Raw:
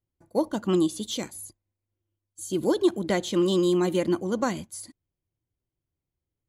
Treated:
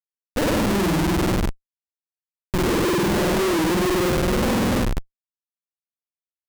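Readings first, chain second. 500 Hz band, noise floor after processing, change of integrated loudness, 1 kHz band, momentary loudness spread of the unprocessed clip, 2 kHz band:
+3.0 dB, below −85 dBFS, +4.5 dB, +9.0 dB, 17 LU, +12.0 dB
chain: spring reverb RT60 2.1 s, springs 49 ms, chirp 30 ms, DRR −7.5 dB
comparator with hysteresis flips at −20.5 dBFS
wow of a warped record 45 rpm, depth 160 cents

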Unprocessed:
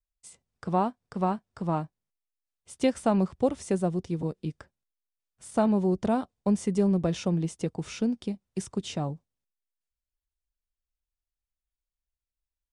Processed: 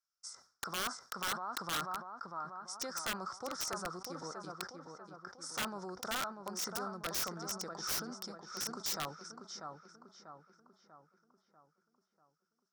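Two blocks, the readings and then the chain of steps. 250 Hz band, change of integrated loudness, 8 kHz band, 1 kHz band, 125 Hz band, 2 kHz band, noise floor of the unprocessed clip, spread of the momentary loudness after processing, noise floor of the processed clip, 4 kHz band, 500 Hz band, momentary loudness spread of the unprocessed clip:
−20.5 dB, −11.0 dB, +4.0 dB, −7.0 dB, −21.0 dB, +3.0 dB, below −85 dBFS, 14 LU, −85 dBFS, +4.5 dB, −16.0 dB, 10 LU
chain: brickwall limiter −24 dBFS, peak gain reduction 11 dB
pair of resonant band-passes 2,700 Hz, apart 2 octaves
on a send: feedback echo with a low-pass in the loop 642 ms, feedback 49%, low-pass 3,100 Hz, level −6 dB
on the sum: wrap-around overflow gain 43.5 dB
level that may fall only so fast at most 140 dB per second
level +14 dB

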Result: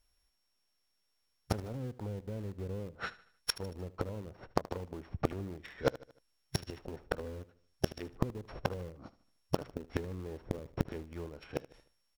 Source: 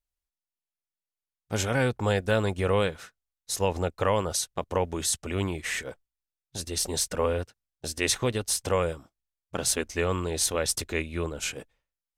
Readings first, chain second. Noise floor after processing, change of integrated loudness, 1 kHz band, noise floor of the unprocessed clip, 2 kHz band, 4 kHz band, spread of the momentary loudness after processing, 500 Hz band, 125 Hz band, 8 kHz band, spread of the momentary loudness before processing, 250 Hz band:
−78 dBFS, −12.0 dB, −10.5 dB, below −85 dBFS, −13.5 dB, −13.0 dB, 9 LU, −11.5 dB, −8.0 dB, −22.5 dB, 10 LU, −7.0 dB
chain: samples sorted by size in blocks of 8 samples
treble cut that deepens with the level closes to 330 Hz, closed at −23 dBFS
in parallel at −11 dB: bit reduction 5 bits
on the sum: gain into a clipping stage and back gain 19 dB
gate with flip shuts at −26 dBFS, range −27 dB
on a send: repeating echo 76 ms, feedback 44%, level −18 dB
on the sum: level +13.5 dB

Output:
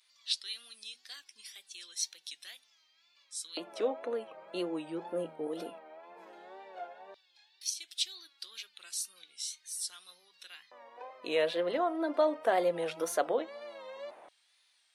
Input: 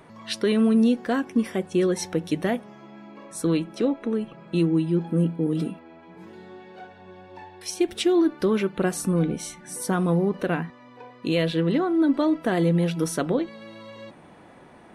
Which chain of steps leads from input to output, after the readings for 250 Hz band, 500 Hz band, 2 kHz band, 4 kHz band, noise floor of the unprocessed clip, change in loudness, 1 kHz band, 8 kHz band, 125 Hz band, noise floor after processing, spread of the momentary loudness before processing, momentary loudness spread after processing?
−20.0 dB, −8.0 dB, −9.0 dB, −2.5 dB, −49 dBFS, −11.0 dB, −4.5 dB, −3.0 dB, −30.5 dB, −70 dBFS, 14 LU, 21 LU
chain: mains-hum notches 50/100/150/200/250 Hz
pitch vibrato 2 Hz 99 cents
auto-filter high-pass square 0.14 Hz 620–4,200 Hz
level −6 dB

